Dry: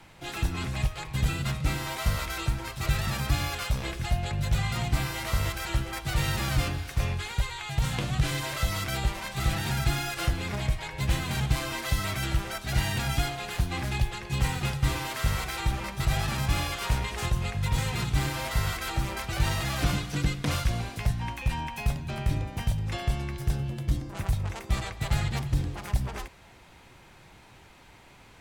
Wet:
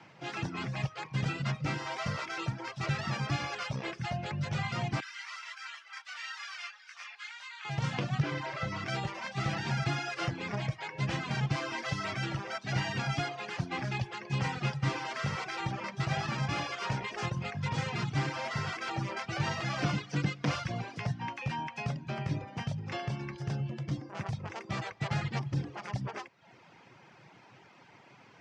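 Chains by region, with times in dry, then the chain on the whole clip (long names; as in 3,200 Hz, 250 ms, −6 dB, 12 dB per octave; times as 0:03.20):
0:05.00–0:07.65: high-pass filter 1,200 Hz 24 dB per octave + micro pitch shift up and down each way 15 cents
0:08.22–0:08.86: low-pass filter 2,300 Hz 6 dB per octave + double-tracking delay 31 ms −8 dB
whole clip: elliptic band-pass filter 130–5,400 Hz, stop band 60 dB; reverb reduction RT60 0.68 s; parametric band 3,900 Hz −7 dB 0.49 octaves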